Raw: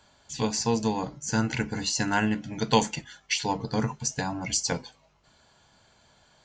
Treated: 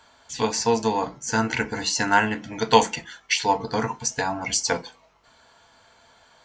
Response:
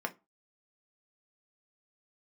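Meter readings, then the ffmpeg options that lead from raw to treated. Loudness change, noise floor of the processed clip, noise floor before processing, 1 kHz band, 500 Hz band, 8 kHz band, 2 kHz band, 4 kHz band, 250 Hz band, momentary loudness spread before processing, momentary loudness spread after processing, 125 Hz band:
+4.5 dB, -58 dBFS, -63 dBFS, +8.0 dB, +6.0 dB, +3.0 dB, +6.5 dB, +4.0 dB, 0.0 dB, 7 LU, 9 LU, -3.0 dB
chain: -filter_complex "[0:a]asplit=2[s0][s1];[s1]bass=f=250:g=-8,treble=f=4000:g=1[s2];[1:a]atrim=start_sample=2205[s3];[s2][s3]afir=irnorm=-1:irlink=0,volume=0.841[s4];[s0][s4]amix=inputs=2:normalize=0"

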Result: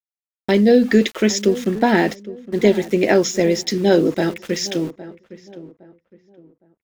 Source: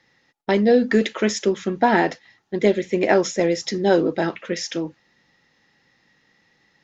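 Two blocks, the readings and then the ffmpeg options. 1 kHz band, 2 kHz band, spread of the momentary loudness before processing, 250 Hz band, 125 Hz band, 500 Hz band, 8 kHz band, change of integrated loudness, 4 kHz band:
-1.5 dB, +1.5 dB, 11 LU, +4.5 dB, +5.0 dB, +2.5 dB, no reading, +3.0 dB, +4.5 dB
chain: -filter_complex "[0:a]equalizer=f=1000:t=o:w=1.7:g=-8.5,aeval=exprs='val(0)*gte(abs(val(0)),0.0106)':c=same,asplit=2[s0][s1];[s1]adelay=812,lowpass=f=1400:p=1,volume=0.158,asplit=2[s2][s3];[s3]adelay=812,lowpass=f=1400:p=1,volume=0.31,asplit=2[s4][s5];[s5]adelay=812,lowpass=f=1400:p=1,volume=0.31[s6];[s2][s4][s6]amix=inputs=3:normalize=0[s7];[s0][s7]amix=inputs=2:normalize=0,volume=1.88"

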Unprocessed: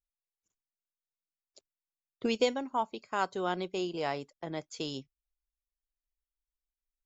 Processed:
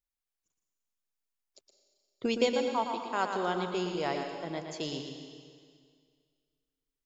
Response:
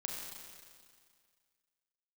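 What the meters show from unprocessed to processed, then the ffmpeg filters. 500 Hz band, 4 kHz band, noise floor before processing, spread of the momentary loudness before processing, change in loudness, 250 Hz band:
+2.0 dB, +1.5 dB, under -85 dBFS, 10 LU, +1.5 dB, +2.0 dB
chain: -filter_complex "[0:a]asplit=2[s0][s1];[1:a]atrim=start_sample=2205,adelay=116[s2];[s1][s2]afir=irnorm=-1:irlink=0,volume=0.631[s3];[s0][s3]amix=inputs=2:normalize=0"

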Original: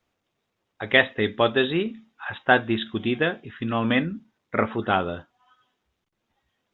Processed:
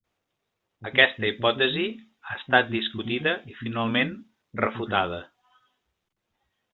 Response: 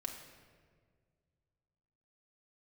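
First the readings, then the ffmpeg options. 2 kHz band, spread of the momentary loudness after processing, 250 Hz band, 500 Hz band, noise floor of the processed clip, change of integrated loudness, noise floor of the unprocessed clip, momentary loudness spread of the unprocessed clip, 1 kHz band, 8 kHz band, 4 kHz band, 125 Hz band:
+0.5 dB, 17 LU, -4.0 dB, -2.5 dB, -82 dBFS, -0.5 dB, -79 dBFS, 14 LU, -1.5 dB, no reading, +3.0 dB, -3.0 dB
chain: -filter_complex "[0:a]acrossover=split=240[s0][s1];[s1]adelay=40[s2];[s0][s2]amix=inputs=2:normalize=0,adynamicequalizer=threshold=0.0178:dfrequency=2000:dqfactor=0.7:tfrequency=2000:tqfactor=0.7:attack=5:release=100:ratio=0.375:range=3:mode=boostabove:tftype=highshelf,volume=0.794"

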